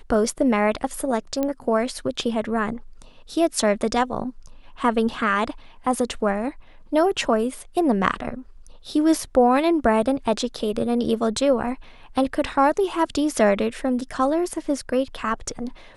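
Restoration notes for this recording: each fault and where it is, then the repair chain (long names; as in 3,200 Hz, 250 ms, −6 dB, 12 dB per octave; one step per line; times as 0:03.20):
0:01.43: click −12 dBFS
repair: click removal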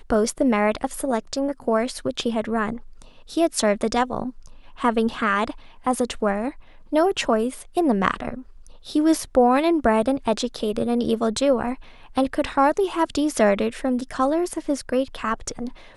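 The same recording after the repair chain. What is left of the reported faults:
none of them is left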